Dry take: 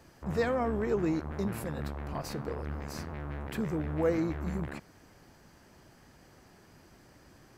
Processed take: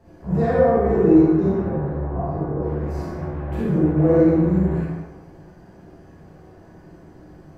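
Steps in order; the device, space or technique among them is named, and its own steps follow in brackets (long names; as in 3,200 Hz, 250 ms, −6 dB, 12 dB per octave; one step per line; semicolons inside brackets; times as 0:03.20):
0:01.50–0:02.59: low-pass filter 1,800 Hz → 1,100 Hz 12 dB per octave
tilt shelving filter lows +8.5 dB, about 1,200 Hz
bathroom (convolution reverb RT60 0.80 s, pre-delay 30 ms, DRR −4.5 dB)
dense smooth reverb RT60 1 s, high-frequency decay 0.65×, DRR −4 dB
level −5.5 dB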